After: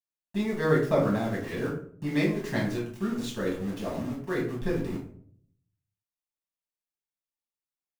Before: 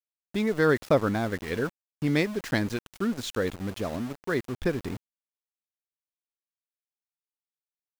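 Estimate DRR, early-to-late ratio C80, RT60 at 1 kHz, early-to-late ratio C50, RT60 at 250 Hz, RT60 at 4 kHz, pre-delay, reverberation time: -5.0 dB, 10.0 dB, 0.50 s, 5.5 dB, 0.75 s, 0.30 s, 5 ms, 0.60 s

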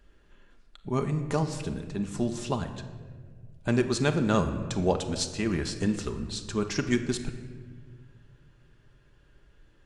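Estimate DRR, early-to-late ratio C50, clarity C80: 6.0 dB, 10.0 dB, 11.0 dB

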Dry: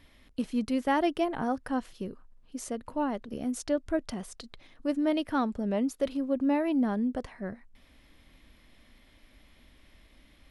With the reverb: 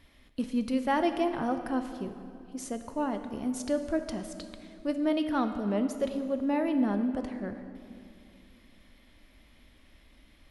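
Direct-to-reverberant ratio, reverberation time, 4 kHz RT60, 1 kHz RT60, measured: 7.5 dB, 2.6 s, 1.8 s, 2.4 s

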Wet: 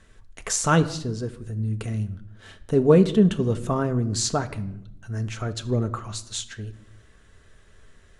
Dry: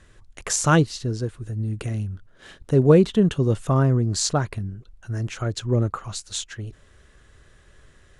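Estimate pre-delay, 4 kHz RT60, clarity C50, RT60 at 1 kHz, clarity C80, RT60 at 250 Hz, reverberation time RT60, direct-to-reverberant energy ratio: 4 ms, 0.55 s, 16.0 dB, 0.70 s, 18.0 dB, 1.2 s, 0.75 s, 7.5 dB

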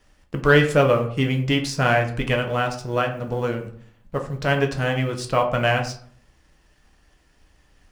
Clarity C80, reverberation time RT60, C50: 13.5 dB, 0.55 s, 10.0 dB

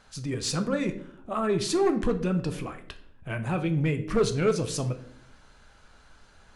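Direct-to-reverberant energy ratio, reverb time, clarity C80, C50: 7.0 dB, 0.65 s, 15.5 dB, 12.5 dB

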